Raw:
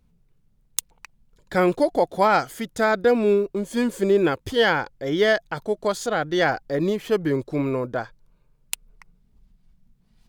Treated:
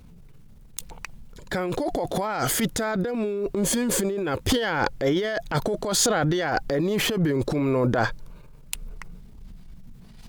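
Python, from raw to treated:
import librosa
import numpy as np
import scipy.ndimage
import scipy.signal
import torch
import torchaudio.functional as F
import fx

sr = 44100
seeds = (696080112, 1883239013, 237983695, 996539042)

y = fx.over_compress(x, sr, threshold_db=-30.0, ratio=-1.0)
y = fx.transient(y, sr, attack_db=-9, sustain_db=4)
y = y * librosa.db_to_amplitude(7.0)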